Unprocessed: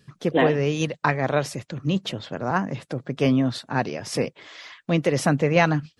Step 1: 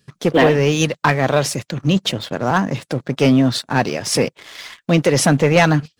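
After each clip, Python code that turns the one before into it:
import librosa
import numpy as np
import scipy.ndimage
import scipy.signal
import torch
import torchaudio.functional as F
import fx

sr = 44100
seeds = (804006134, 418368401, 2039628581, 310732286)

y = fx.high_shelf(x, sr, hz=3700.0, db=6.5)
y = fx.leveller(y, sr, passes=2)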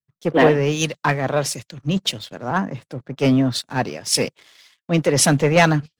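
y = fx.band_widen(x, sr, depth_pct=100)
y = y * 10.0 ** (-3.5 / 20.0)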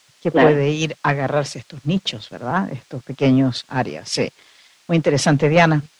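y = fx.dmg_noise_colour(x, sr, seeds[0], colour='blue', level_db=-44.0)
y = fx.air_absorb(y, sr, metres=110.0)
y = y * 10.0 ** (1.5 / 20.0)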